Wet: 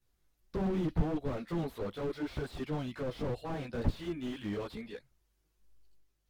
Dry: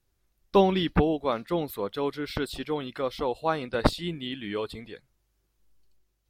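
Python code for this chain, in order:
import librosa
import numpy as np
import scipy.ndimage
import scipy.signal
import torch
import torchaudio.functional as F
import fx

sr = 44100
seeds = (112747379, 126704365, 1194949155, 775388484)

y = fx.chorus_voices(x, sr, voices=2, hz=0.78, base_ms=16, depth_ms=3.6, mix_pct=65)
y = fx.slew_limit(y, sr, full_power_hz=10.0)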